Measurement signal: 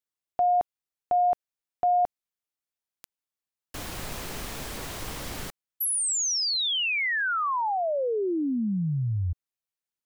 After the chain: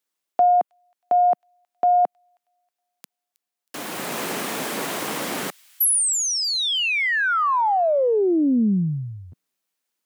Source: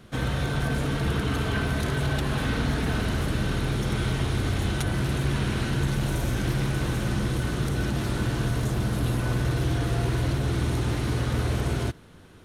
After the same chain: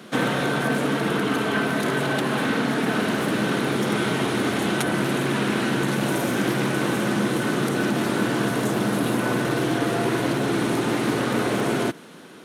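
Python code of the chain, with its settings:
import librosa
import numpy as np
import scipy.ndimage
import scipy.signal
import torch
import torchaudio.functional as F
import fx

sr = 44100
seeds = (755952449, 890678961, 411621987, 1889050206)

y = scipy.signal.sosfilt(scipy.signal.butter(4, 190.0, 'highpass', fs=sr, output='sos'), x)
y = fx.dynamic_eq(y, sr, hz=4900.0, q=0.87, threshold_db=-46.0, ratio=4.0, max_db=-5)
y = fx.rider(y, sr, range_db=3, speed_s=0.5)
y = fx.echo_wet_highpass(y, sr, ms=318, feedback_pct=34, hz=2800.0, wet_db=-22.5)
y = fx.doppler_dist(y, sr, depth_ms=0.11)
y = y * 10.0 ** (8.5 / 20.0)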